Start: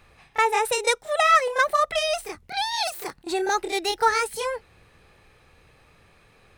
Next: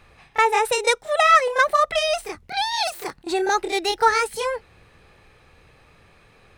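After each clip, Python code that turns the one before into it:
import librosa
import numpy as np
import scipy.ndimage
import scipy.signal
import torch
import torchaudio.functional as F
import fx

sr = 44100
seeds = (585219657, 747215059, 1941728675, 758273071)

y = fx.high_shelf(x, sr, hz=8800.0, db=-6.0)
y = y * librosa.db_to_amplitude(3.0)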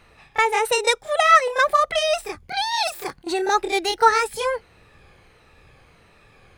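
y = fx.spec_ripple(x, sr, per_octave=1.9, drift_hz=-1.5, depth_db=6)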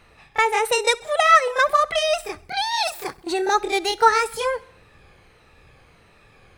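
y = fx.echo_feedback(x, sr, ms=66, feedback_pct=59, wet_db=-23.0)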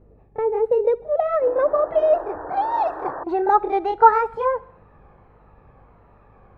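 y = fx.spec_paint(x, sr, seeds[0], shape='noise', start_s=1.41, length_s=1.83, low_hz=280.0, high_hz=1900.0, level_db=-33.0)
y = fx.filter_sweep_lowpass(y, sr, from_hz=450.0, to_hz=980.0, start_s=0.66, end_s=3.42, q=1.8)
y = fx.add_hum(y, sr, base_hz=50, snr_db=34)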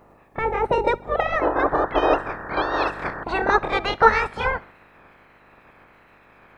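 y = fx.spec_clip(x, sr, under_db=29)
y = y * librosa.db_to_amplitude(-1.0)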